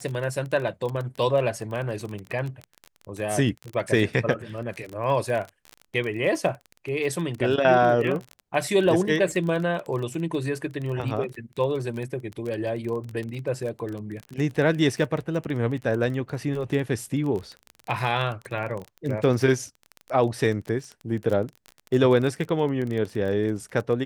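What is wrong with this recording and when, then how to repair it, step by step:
crackle 24/s -29 dBFS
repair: de-click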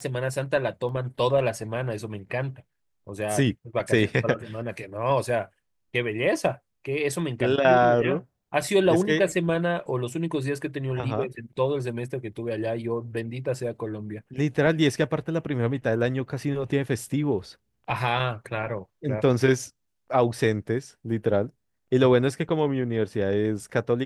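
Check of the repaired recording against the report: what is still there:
none

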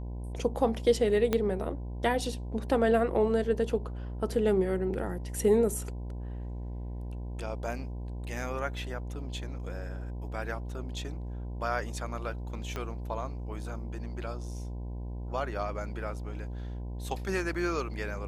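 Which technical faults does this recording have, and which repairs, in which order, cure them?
buzz 60 Hz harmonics 17 -37 dBFS
1.33 pop -13 dBFS
12.76 pop -21 dBFS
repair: de-click; de-hum 60 Hz, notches 17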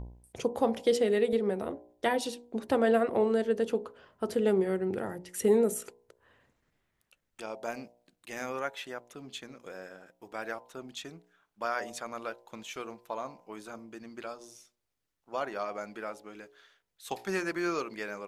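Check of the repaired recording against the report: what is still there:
1.33 pop
12.76 pop

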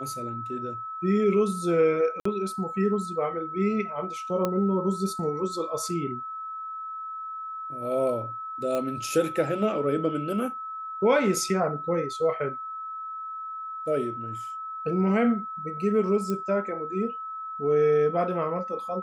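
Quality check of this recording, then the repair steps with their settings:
tone 1300 Hz -33 dBFS
2.2–2.25 gap 54 ms
4.45 pop -13 dBFS
8.75 pop -17 dBFS
16.3 pop -19 dBFS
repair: de-click; notch 1300 Hz, Q 30; interpolate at 2.2, 54 ms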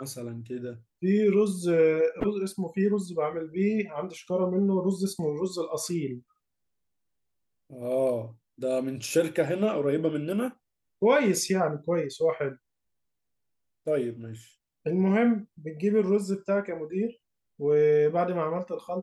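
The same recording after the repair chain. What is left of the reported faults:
none

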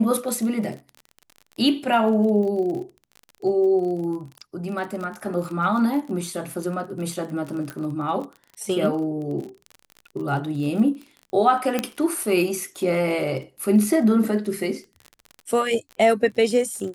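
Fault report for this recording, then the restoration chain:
crackle 30/s -31 dBFS
7.7 pop -17 dBFS
11.79 pop -8 dBFS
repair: de-click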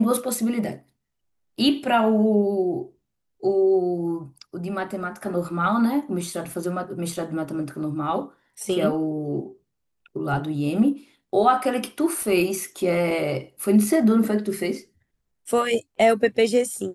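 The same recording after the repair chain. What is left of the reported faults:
none

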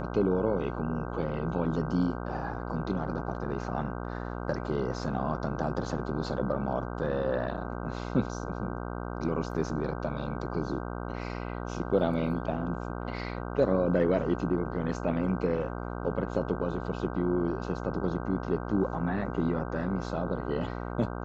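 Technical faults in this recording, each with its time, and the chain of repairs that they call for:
buzz 60 Hz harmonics 26 -36 dBFS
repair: de-hum 60 Hz, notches 26

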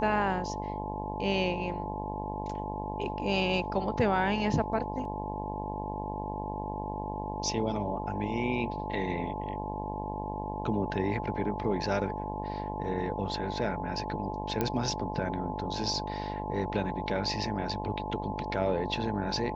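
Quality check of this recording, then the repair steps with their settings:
buzz 50 Hz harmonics 21 -37 dBFS
tone 860 Hz -37 dBFS
14.61 pop -14 dBFS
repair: de-click; de-hum 50 Hz, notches 21; notch 860 Hz, Q 30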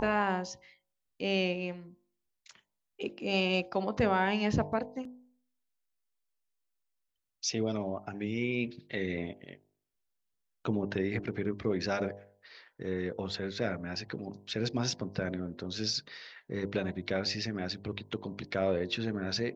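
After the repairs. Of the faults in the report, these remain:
none

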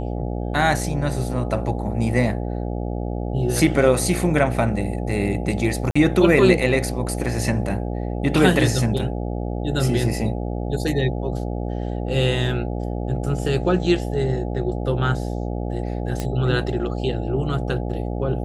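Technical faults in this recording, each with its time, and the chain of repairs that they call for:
buzz 60 Hz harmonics 14 -26 dBFS
5.91–5.96 gap 45 ms
16.2 pop -12 dBFS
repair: de-click; de-hum 60 Hz, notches 14; interpolate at 5.91, 45 ms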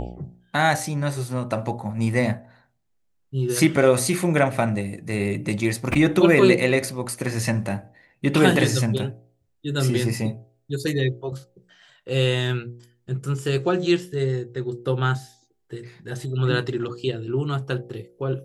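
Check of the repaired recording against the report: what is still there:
none

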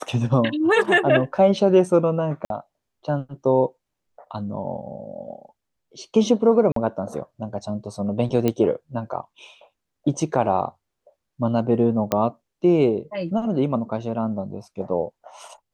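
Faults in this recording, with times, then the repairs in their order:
2.45–2.5 gap 52 ms
6.72–6.76 gap 43 ms
8.48 pop -9 dBFS
12.12 pop -7 dBFS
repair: de-click; interpolate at 2.45, 52 ms; interpolate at 6.72, 43 ms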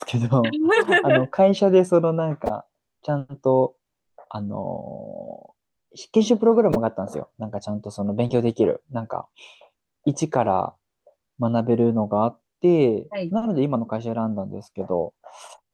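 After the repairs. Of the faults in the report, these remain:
none

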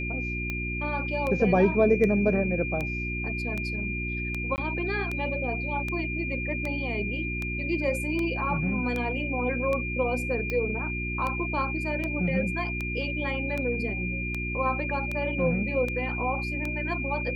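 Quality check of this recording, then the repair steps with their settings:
hum 60 Hz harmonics 6 -33 dBFS
tick 78 rpm -18 dBFS
tone 2400 Hz -32 dBFS
4.56–4.58 gap 19 ms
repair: de-click; de-hum 60 Hz, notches 6; notch 2400 Hz, Q 30; interpolate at 4.56, 19 ms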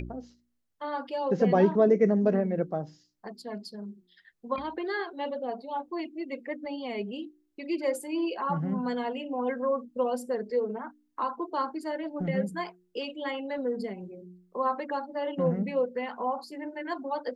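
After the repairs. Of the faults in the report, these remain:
none

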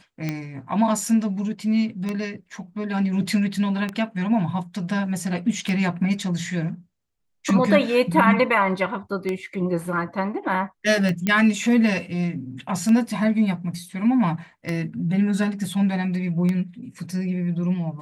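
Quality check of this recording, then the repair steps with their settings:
tick 33 1/3 rpm -13 dBFS
11.27 pop -9 dBFS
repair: de-click

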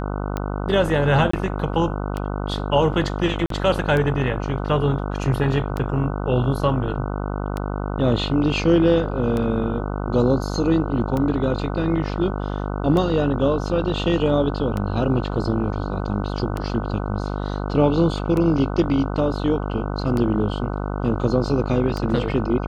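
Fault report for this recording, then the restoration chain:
buzz 50 Hz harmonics 30 -26 dBFS
tick 33 1/3 rpm -13 dBFS
1.31–1.33 gap 24 ms
3.46–3.5 gap 43 ms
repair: de-click; de-hum 50 Hz, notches 30; interpolate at 1.31, 24 ms; interpolate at 3.46, 43 ms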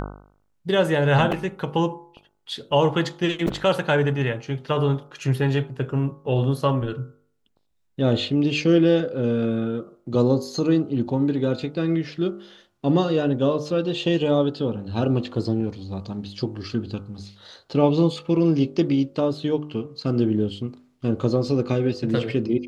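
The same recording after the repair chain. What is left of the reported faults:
none

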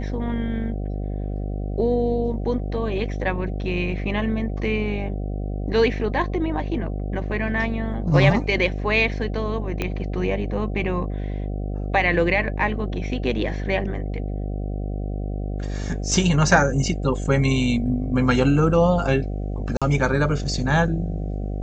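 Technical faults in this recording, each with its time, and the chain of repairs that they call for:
buzz 50 Hz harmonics 15 -27 dBFS
9.82 pop -11 dBFS
19.77–19.82 gap 46 ms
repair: de-click; de-hum 50 Hz, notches 15; interpolate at 19.77, 46 ms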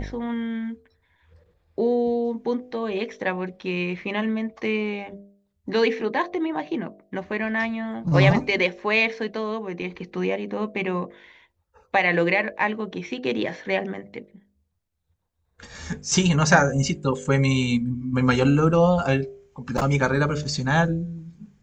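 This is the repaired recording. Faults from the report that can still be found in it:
9.82 pop

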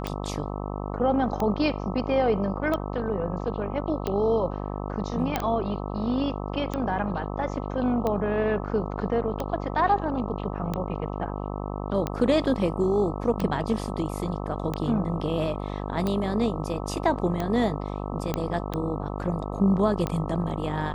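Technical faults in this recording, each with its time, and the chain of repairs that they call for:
buzz 50 Hz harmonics 26 -32 dBFS
tick 45 rpm -15 dBFS
5.36 pop -10 dBFS
18.34 pop -12 dBFS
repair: de-click; de-hum 50 Hz, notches 26

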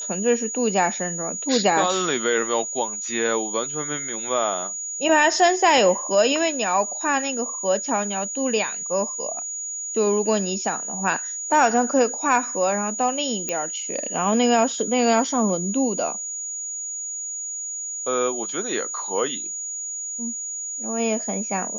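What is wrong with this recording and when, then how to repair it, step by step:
tone 6800 Hz -28 dBFS
13.49 pop -10 dBFS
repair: de-click; notch 6800 Hz, Q 30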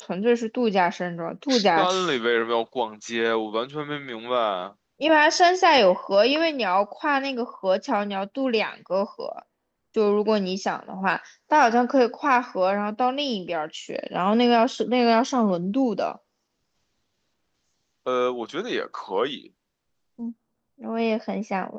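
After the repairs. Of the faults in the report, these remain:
none

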